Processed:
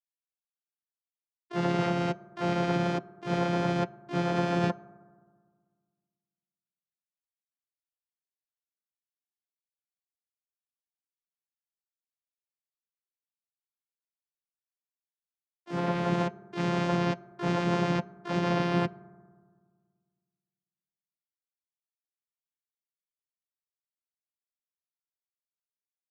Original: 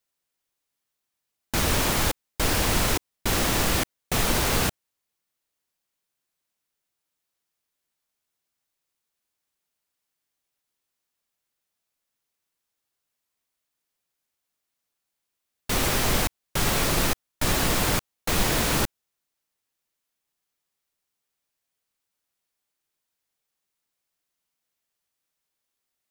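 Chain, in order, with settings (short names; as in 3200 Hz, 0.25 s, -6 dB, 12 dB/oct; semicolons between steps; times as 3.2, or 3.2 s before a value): G.711 law mismatch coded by A; low-pass opened by the level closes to 1900 Hz, open at -21 dBFS; expander -18 dBFS; comb 6.2 ms, depth 52%; AGC gain up to 3 dB; limiter -15.5 dBFS, peak gain reduction 10 dB; small resonant body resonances 620/1600 Hz, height 10 dB, ringing for 80 ms; vocoder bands 8, saw 174 Hz; harmoniser -4 st -12 dB, +12 st -4 dB; air absorption 120 m; reverb RT60 1.7 s, pre-delay 3 ms, DRR 18 dB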